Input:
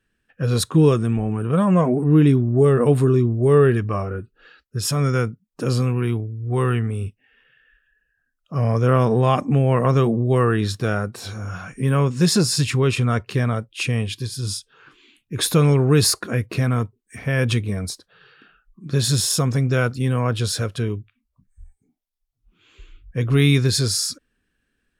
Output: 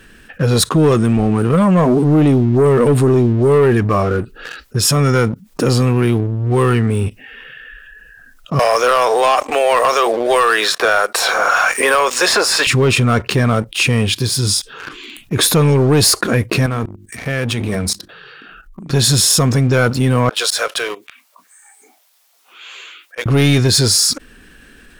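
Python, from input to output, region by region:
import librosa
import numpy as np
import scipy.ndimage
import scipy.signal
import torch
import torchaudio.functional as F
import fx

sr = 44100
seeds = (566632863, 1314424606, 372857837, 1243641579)

y = fx.chain(x, sr, fx.highpass(hz=570.0, slope=24),
    fx.leveller(passes=1),
    fx.band_squash(depth_pct=100), at=(8.59, 12.67))
y = fx.chain(y, sr, fx.hum_notches(base_hz=50, count=7),
    fx.level_steps(step_db=16), at=(16.66, 18.9))
y = fx.chain(y, sr, fx.highpass(hz=580.0, slope=24),
    fx.auto_swell(attack_ms=103.0), at=(20.29, 23.26))
y = fx.peak_eq(y, sr, hz=100.0, db=-5.0, octaves=1.2)
y = fx.leveller(y, sr, passes=2)
y = fx.env_flatten(y, sr, amount_pct=50)
y = y * 10.0 ** (-1.0 / 20.0)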